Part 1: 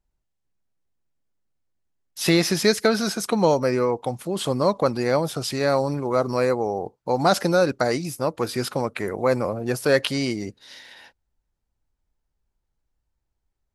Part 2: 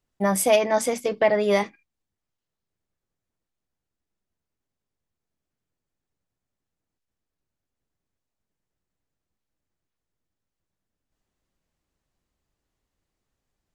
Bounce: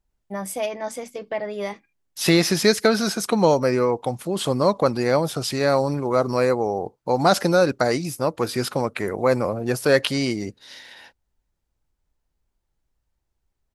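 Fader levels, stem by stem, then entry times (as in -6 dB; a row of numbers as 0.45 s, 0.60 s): +1.5 dB, -8.0 dB; 0.00 s, 0.10 s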